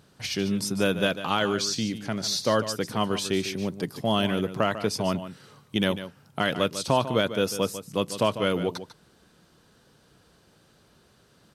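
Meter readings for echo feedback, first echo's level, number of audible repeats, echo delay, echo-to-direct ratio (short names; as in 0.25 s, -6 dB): no steady repeat, -12.0 dB, 1, 0.147 s, -12.0 dB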